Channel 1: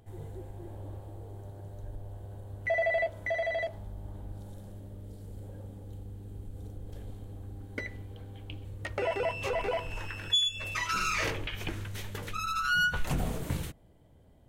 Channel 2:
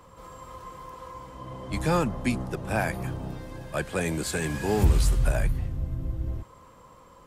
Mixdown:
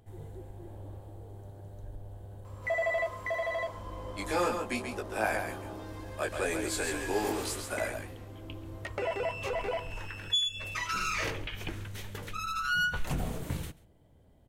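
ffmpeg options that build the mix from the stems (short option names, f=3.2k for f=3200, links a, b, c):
-filter_complex "[0:a]volume=-2dB,asplit=2[a][b];[b]volume=-22.5dB[c];[1:a]highpass=f=300:w=0.5412,highpass=f=300:w=1.3066,flanger=delay=18.5:depth=3.8:speed=0.73,adelay=2450,volume=0.5dB,asplit=2[d][e];[e]volume=-6.5dB[f];[c][f]amix=inputs=2:normalize=0,aecho=0:1:136:1[g];[a][d][g]amix=inputs=3:normalize=0"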